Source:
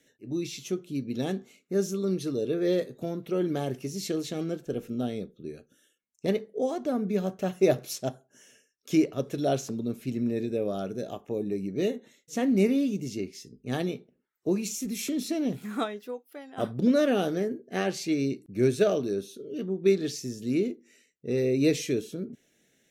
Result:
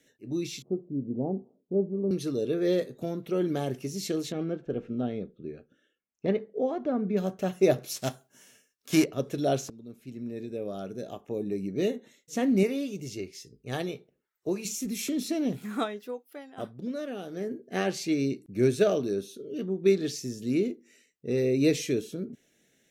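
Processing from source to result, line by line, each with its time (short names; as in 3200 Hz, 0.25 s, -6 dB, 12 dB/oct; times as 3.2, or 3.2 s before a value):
0.62–2.11 steep low-pass 940 Hz 48 dB/oct
4.32–7.17 LPF 2400 Hz
7.95–9.03 spectral whitening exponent 0.6
9.7–11.74 fade in linear, from -17.5 dB
12.63–14.65 bell 230 Hz -10 dB
16.39–17.61 dip -12 dB, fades 0.32 s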